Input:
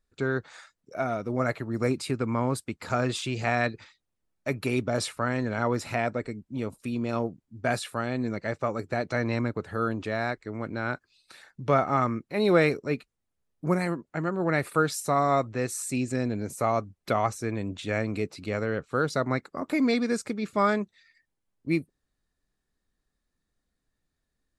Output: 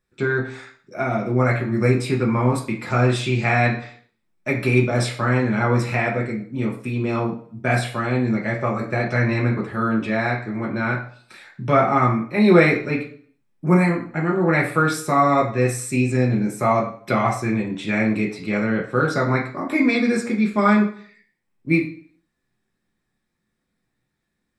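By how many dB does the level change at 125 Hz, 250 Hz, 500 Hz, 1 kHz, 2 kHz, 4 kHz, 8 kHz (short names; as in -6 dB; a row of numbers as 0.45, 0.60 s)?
+10.5, +9.0, +6.0, +6.5, +9.0, +4.0, +2.5 dB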